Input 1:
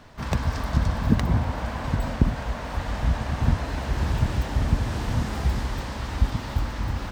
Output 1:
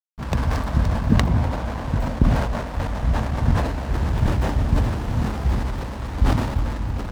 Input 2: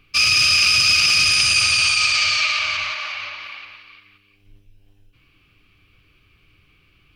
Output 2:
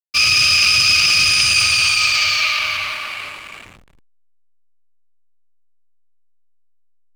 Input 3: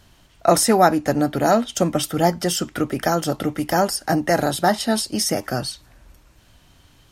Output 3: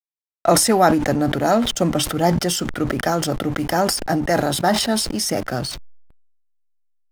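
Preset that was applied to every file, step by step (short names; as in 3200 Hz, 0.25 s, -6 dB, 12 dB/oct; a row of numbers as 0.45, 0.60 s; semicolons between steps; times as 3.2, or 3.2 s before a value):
backlash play -31.5 dBFS; sustainer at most 47 dB/s; normalise peaks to -2 dBFS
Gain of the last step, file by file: +1.5, +2.0, -0.5 dB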